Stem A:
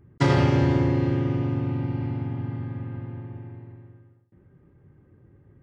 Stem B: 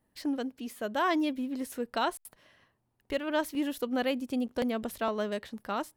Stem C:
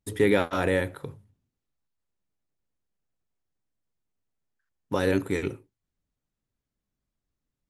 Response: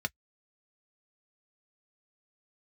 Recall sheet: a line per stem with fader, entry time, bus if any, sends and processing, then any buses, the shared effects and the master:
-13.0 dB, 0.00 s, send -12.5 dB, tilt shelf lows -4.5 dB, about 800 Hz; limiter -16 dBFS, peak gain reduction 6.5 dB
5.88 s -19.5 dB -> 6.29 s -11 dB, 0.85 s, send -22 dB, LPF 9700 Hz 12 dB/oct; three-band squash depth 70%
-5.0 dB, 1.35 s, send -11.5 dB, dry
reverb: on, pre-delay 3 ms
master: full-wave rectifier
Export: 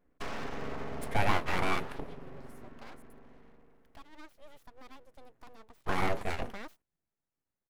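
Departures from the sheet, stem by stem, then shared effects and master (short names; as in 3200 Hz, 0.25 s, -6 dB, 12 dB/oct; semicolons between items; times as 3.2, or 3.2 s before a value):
stem B: missing LPF 9700 Hz 12 dB/oct; stem C: entry 1.35 s -> 0.95 s; reverb return +6.5 dB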